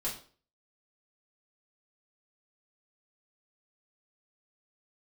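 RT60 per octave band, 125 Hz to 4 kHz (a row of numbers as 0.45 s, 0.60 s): 0.45 s, 0.45 s, 0.45 s, 0.40 s, 0.35 s, 0.35 s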